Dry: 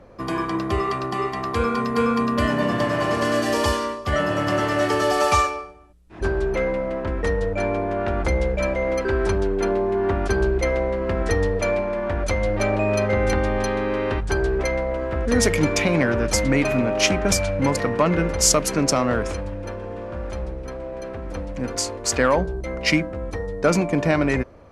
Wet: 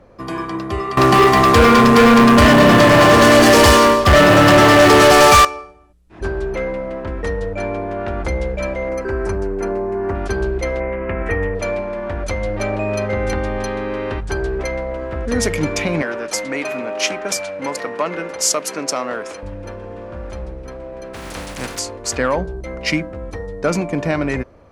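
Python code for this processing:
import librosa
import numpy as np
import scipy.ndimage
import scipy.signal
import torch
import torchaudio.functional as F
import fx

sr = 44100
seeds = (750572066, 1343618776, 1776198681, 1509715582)

y = fx.leveller(x, sr, passes=5, at=(0.97, 5.45))
y = fx.peak_eq(y, sr, hz=3500.0, db=-14.0, octaves=0.58, at=(8.89, 10.15))
y = fx.high_shelf_res(y, sr, hz=3200.0, db=-11.0, q=3.0, at=(10.8, 11.55))
y = fx.bessel_highpass(y, sr, hz=430.0, order=2, at=(16.02, 19.43))
y = fx.spec_flatten(y, sr, power=0.45, at=(21.13, 21.78), fade=0.02)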